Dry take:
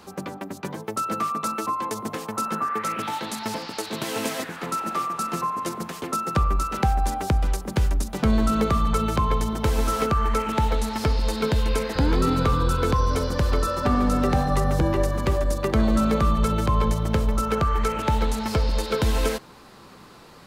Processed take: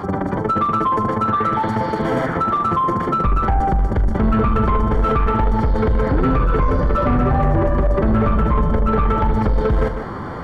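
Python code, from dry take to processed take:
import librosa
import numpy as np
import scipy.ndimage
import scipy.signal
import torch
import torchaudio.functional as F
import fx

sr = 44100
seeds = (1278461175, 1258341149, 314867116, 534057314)

p1 = fx.octave_divider(x, sr, octaves=1, level_db=-2.0)
p2 = fx.stretch_vocoder(p1, sr, factor=0.51)
p3 = scipy.signal.savgol_filter(p2, 41, 4, mode='constant')
p4 = 10.0 ** (-18.5 / 20.0) * np.tanh(p3 / 10.0 ** (-18.5 / 20.0))
p5 = p4 + fx.echo_multitap(p4, sr, ms=(42, 149), db=(-14.5, -16.5), dry=0)
p6 = fx.env_flatten(p5, sr, amount_pct=50)
y = p6 * 10.0 ** (6.5 / 20.0)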